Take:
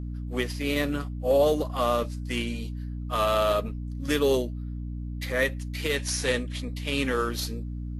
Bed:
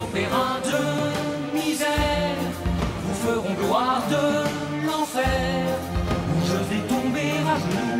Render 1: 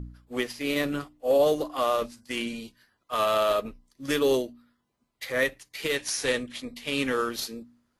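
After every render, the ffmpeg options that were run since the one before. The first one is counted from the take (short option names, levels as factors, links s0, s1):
-af "bandreject=f=60:t=h:w=4,bandreject=f=120:t=h:w=4,bandreject=f=180:t=h:w=4,bandreject=f=240:t=h:w=4,bandreject=f=300:t=h:w=4"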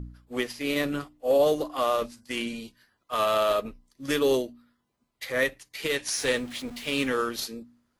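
-filter_complex "[0:a]asettb=1/sr,asplit=3[s0][s1][s2];[s0]atrim=end=6.124[s3];[s1]atrim=start=6.12:end=7.08,asetpts=PTS-STARTPTS,afade=t=in:d=0.004:c=qsin,afade=t=out:st=0.956:d=0.004:c=qsin,aeval=exprs='val(0)+0.5*0.00944*sgn(val(0))':c=same[s4];[s2]atrim=start=7.076[s5];[s3][s4]acrossfade=d=0.004:c1=hsin:c2=qsin[s6];[s6][s5]acrossfade=d=0.004:c1=qsin:c2=hsin"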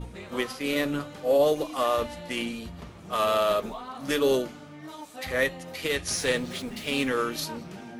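-filter_complex "[1:a]volume=0.133[s0];[0:a][s0]amix=inputs=2:normalize=0"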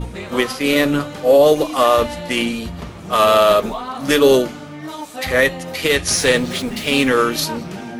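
-af "volume=3.76,alimiter=limit=0.708:level=0:latency=1"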